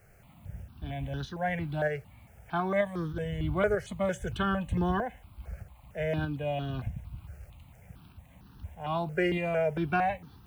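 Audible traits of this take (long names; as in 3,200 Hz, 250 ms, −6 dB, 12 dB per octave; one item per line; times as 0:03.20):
a quantiser's noise floor 12 bits, dither triangular
tremolo saw up 1.6 Hz, depth 35%
notches that jump at a steady rate 4.4 Hz 990–2,200 Hz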